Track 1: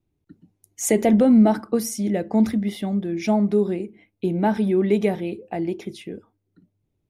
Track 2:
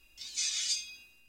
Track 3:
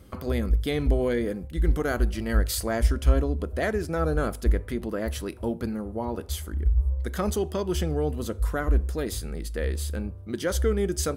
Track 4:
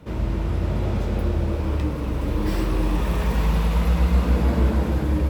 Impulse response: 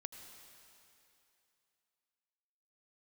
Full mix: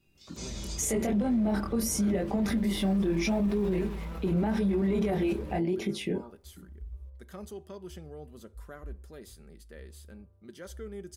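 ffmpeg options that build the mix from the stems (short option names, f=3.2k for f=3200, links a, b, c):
-filter_complex "[0:a]acontrast=89,alimiter=limit=-10.5dB:level=0:latency=1:release=31,volume=0dB[a];[1:a]volume=-9dB[b];[2:a]highpass=51,adelay=150,volume=-17.5dB[c];[3:a]adelay=300,volume=-14dB[d];[a][b]amix=inputs=2:normalize=0,flanger=delay=20:depth=6.4:speed=0.84,alimiter=limit=-20dB:level=0:latency=1:release=162,volume=0dB[e];[c][d]amix=inputs=2:normalize=0,alimiter=level_in=7dB:limit=-24dB:level=0:latency=1:release=24,volume=-7dB,volume=0dB[f];[e][f]amix=inputs=2:normalize=0,aecho=1:1:5.1:0.33,alimiter=limit=-21dB:level=0:latency=1:release=14"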